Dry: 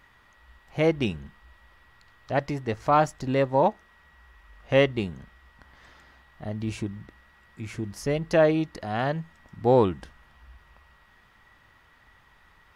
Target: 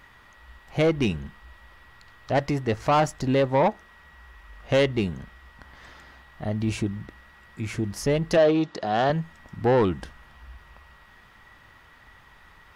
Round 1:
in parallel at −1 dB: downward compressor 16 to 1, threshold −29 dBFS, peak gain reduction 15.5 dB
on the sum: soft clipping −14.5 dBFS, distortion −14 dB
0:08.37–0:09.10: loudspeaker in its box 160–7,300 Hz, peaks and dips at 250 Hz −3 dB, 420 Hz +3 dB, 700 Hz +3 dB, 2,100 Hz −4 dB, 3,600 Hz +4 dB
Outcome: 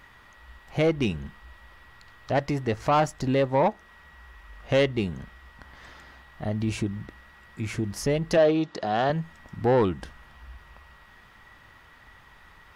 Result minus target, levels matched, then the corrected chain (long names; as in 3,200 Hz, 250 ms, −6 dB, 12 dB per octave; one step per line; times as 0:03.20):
downward compressor: peak gain reduction +9 dB
in parallel at −1 dB: downward compressor 16 to 1, threshold −19.5 dBFS, peak gain reduction 6.5 dB
on the sum: soft clipping −14.5 dBFS, distortion −12 dB
0:08.37–0:09.10: loudspeaker in its box 160–7,300 Hz, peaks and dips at 250 Hz −3 dB, 420 Hz +3 dB, 700 Hz +3 dB, 2,100 Hz −4 dB, 3,600 Hz +4 dB